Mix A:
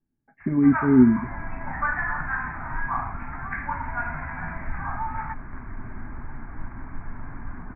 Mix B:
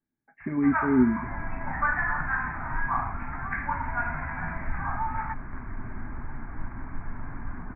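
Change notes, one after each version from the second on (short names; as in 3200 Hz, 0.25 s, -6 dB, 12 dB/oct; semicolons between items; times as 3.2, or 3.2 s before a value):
speech: add tilt +3 dB/oct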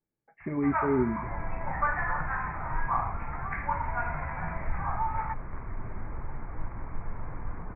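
master: add thirty-one-band EQ 250 Hz -11 dB, 500 Hz +12 dB, 1600 Hz -8 dB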